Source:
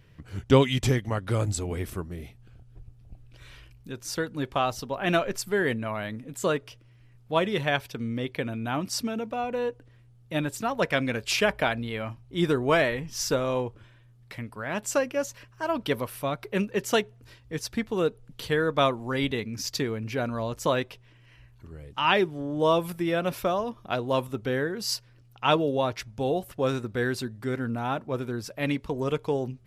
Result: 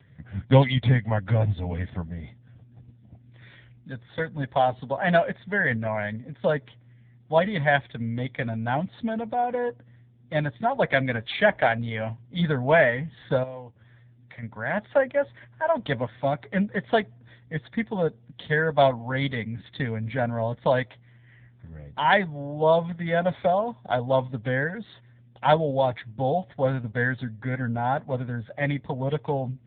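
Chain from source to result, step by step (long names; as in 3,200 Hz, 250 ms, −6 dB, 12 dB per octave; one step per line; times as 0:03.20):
0:13.43–0:14.43: downward compressor 2.5 to 1, threshold −44 dBFS, peak gain reduction 13.5 dB
0:15.96–0:16.53: dynamic equaliser 280 Hz, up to +4 dB, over −46 dBFS, Q 3.2
phaser with its sweep stopped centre 1,800 Hz, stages 8
0:26.66–0:27.15: slack as between gear wheels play −46.5 dBFS
level +7.5 dB
AMR narrowband 6.7 kbit/s 8,000 Hz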